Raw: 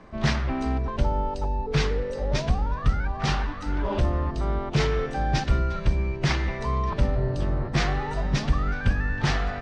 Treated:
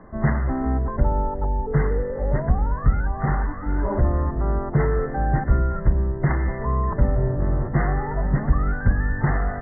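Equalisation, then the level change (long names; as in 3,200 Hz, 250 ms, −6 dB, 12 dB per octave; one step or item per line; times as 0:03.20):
linear-phase brick-wall low-pass 2,100 Hz
high-frequency loss of the air 470 metres
+4.0 dB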